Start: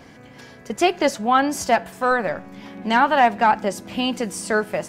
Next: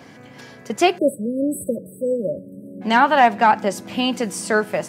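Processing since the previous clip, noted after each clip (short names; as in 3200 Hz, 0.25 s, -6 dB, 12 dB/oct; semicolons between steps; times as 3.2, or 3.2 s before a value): HPF 95 Hz 24 dB/oct; spectral delete 0.98–2.81, 640–7800 Hz; gain +2 dB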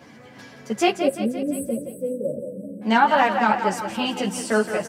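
on a send: feedback echo 0.172 s, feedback 56%, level -9 dB; on the sum: ensemble effect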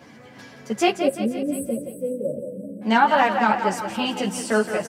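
echo 0.488 s -24 dB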